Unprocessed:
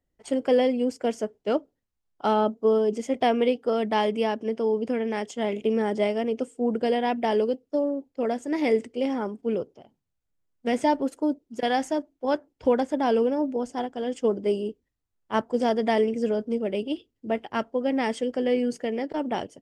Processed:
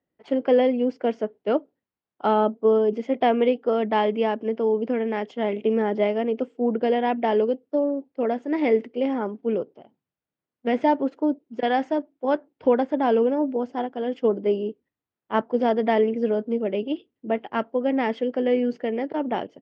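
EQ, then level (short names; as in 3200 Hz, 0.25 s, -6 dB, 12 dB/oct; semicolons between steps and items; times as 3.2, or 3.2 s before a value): BPF 170–4000 Hz; air absorption 180 m; +3.0 dB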